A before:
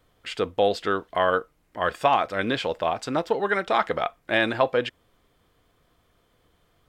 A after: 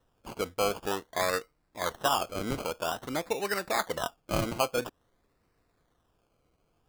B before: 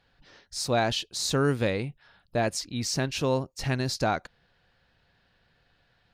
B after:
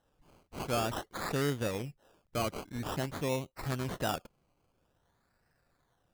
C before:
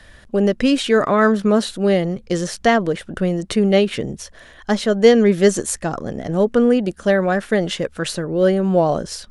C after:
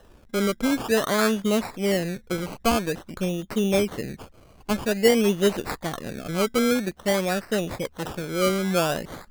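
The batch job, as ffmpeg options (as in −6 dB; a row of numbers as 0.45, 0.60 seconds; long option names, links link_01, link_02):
-af "acrusher=samples=19:mix=1:aa=0.000001:lfo=1:lforange=11.4:lforate=0.5,volume=-7dB"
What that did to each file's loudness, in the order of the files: −6.5, −7.0, −6.5 LU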